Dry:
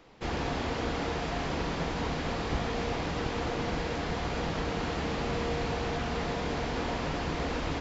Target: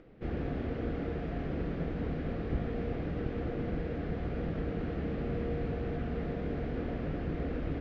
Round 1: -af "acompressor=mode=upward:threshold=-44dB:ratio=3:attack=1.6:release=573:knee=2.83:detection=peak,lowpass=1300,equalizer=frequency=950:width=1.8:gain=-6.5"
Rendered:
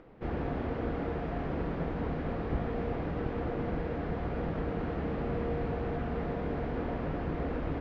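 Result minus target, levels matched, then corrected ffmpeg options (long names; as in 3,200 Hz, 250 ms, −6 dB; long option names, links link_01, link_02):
1,000 Hz band +5.5 dB
-af "acompressor=mode=upward:threshold=-44dB:ratio=3:attack=1.6:release=573:knee=2.83:detection=peak,lowpass=1300,equalizer=frequency=950:width=1.8:gain=-18"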